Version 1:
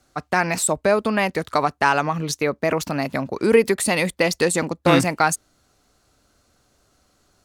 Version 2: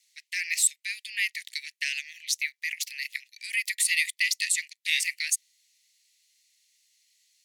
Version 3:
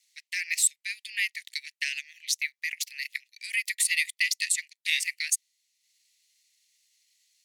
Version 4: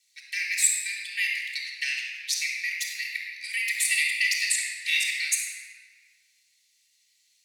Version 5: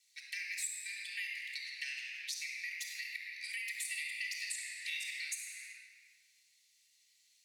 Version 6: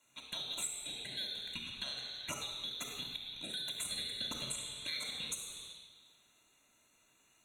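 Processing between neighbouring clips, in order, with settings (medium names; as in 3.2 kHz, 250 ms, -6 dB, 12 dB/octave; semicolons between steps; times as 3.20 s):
steep high-pass 1.9 kHz 96 dB/octave
transient shaper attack +2 dB, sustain -6 dB; trim -1.5 dB
simulated room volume 3000 m³, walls mixed, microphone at 3.6 m; trim -2 dB
compression 3:1, threshold -38 dBFS, peak gain reduction 15.5 dB; trim -3.5 dB
four frequency bands reordered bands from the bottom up 4321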